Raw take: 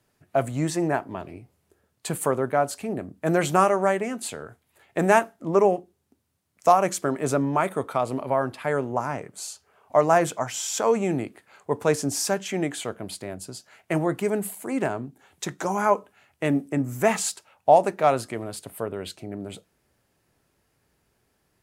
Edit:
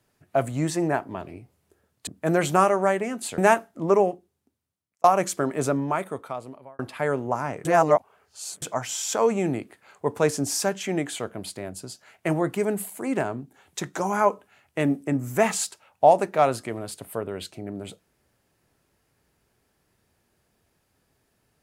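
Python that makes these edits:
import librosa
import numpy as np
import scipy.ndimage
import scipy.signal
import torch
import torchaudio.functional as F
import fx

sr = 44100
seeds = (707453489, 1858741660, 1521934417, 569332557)

y = fx.edit(x, sr, fx.cut(start_s=2.07, length_s=1.0),
    fx.cut(start_s=4.38, length_s=0.65),
    fx.fade_out_span(start_s=5.56, length_s=1.13),
    fx.fade_out_span(start_s=7.24, length_s=1.2),
    fx.reverse_span(start_s=9.3, length_s=0.97), tone=tone)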